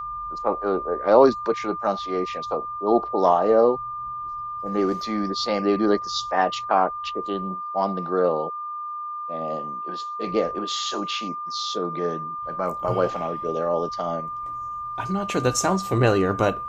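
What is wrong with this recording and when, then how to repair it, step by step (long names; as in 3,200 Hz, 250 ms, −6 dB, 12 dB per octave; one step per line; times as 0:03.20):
whistle 1,200 Hz −29 dBFS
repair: notch filter 1,200 Hz, Q 30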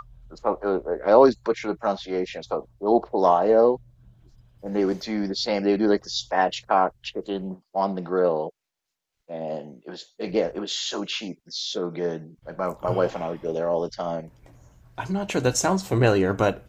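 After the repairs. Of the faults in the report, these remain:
none of them is left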